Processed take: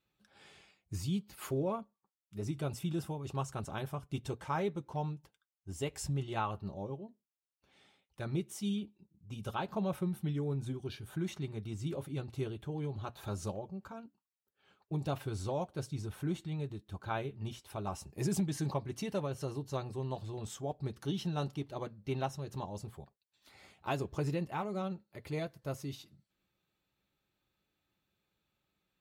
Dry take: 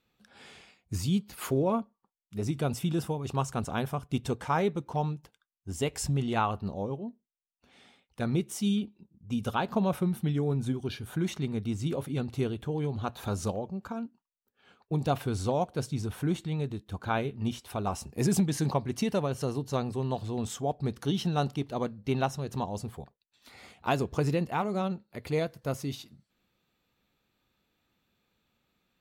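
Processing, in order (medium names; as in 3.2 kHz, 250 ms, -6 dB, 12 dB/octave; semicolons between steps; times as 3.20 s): comb of notches 240 Hz; trim -6 dB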